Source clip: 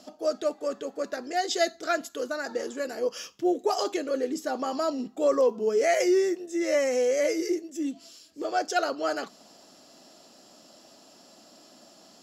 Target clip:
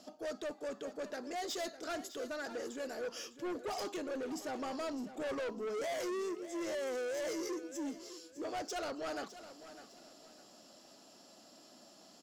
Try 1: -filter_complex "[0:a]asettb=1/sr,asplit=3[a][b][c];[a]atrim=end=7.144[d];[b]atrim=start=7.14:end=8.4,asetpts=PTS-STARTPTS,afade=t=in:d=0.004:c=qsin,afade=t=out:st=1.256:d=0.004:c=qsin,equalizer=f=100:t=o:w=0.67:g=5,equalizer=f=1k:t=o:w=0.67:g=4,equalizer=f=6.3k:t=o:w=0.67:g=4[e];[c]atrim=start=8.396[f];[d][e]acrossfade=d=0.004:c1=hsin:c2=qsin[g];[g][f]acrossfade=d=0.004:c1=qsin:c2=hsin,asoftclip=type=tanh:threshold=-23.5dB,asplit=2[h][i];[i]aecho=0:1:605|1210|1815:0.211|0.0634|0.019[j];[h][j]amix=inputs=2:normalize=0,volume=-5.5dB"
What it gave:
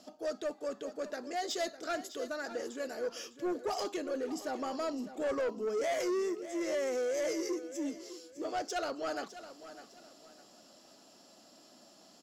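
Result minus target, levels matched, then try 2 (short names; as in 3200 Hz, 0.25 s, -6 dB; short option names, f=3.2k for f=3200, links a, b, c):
soft clip: distortion -6 dB
-filter_complex "[0:a]asettb=1/sr,asplit=3[a][b][c];[a]atrim=end=7.144[d];[b]atrim=start=7.14:end=8.4,asetpts=PTS-STARTPTS,afade=t=in:d=0.004:c=qsin,afade=t=out:st=1.256:d=0.004:c=qsin,equalizer=f=100:t=o:w=0.67:g=5,equalizer=f=1k:t=o:w=0.67:g=4,equalizer=f=6.3k:t=o:w=0.67:g=4[e];[c]atrim=start=8.396[f];[d][e]acrossfade=d=0.004:c1=hsin:c2=qsin[g];[g][f]acrossfade=d=0.004:c1=qsin:c2=hsin,asoftclip=type=tanh:threshold=-30.5dB,asplit=2[h][i];[i]aecho=0:1:605|1210|1815:0.211|0.0634|0.019[j];[h][j]amix=inputs=2:normalize=0,volume=-5.5dB"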